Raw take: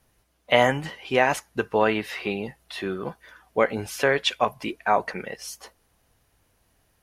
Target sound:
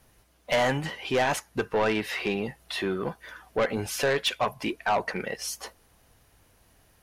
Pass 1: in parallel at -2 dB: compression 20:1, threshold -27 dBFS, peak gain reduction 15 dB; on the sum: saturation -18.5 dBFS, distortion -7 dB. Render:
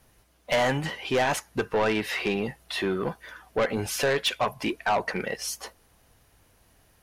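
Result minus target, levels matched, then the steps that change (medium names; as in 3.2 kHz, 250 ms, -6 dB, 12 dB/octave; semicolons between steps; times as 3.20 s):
compression: peak gain reduction -8.5 dB
change: compression 20:1, threshold -36 dBFS, peak gain reduction 24 dB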